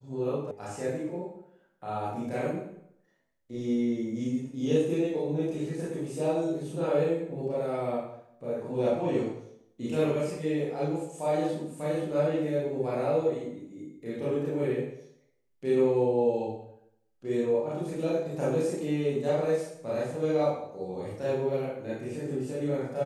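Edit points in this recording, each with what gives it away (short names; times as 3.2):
0.51 sound cut off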